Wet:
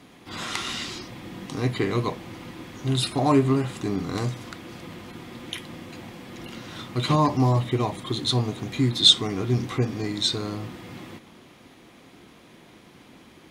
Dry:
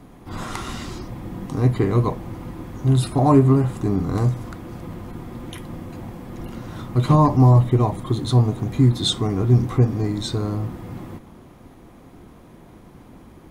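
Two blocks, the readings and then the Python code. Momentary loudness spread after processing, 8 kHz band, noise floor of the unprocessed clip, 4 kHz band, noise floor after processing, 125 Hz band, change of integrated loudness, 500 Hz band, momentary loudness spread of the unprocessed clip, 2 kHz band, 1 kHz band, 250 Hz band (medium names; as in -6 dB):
20 LU, +2.5 dB, -46 dBFS, +8.0 dB, -52 dBFS, -9.0 dB, -4.5 dB, -4.0 dB, 20 LU, +4.0 dB, -3.5 dB, -5.0 dB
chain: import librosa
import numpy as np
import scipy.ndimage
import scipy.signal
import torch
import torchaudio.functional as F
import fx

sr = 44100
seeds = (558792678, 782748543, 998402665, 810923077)

y = fx.weighting(x, sr, curve='D')
y = y * librosa.db_to_amplitude(-3.5)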